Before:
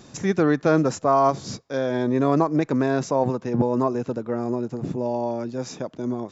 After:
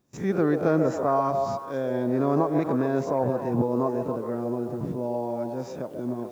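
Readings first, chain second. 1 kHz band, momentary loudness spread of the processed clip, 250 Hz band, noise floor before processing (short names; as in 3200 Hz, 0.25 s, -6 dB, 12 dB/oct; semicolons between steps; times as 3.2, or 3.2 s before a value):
-4.0 dB, 8 LU, -3.0 dB, -49 dBFS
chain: spectral swells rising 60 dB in 0.31 s; high shelf 2100 Hz -11.5 dB; requantised 10-bit, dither triangular; gate with hold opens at -31 dBFS; on a send: delay with a stepping band-pass 0.138 s, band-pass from 510 Hz, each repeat 0.7 oct, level -3.5 dB; on the sum: gain -3.5 dB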